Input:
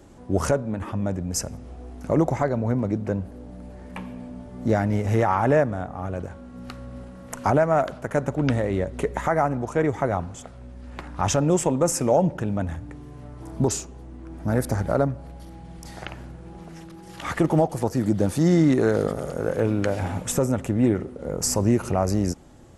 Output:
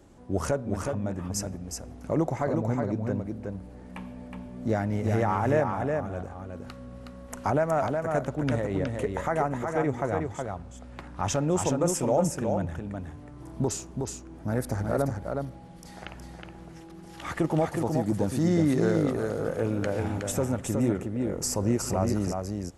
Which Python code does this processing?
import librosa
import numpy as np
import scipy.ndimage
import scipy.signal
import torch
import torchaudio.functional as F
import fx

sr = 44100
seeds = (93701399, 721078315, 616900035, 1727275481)

y = x + 10.0 ** (-4.5 / 20.0) * np.pad(x, (int(367 * sr / 1000.0), 0))[:len(x)]
y = F.gain(torch.from_numpy(y), -5.5).numpy()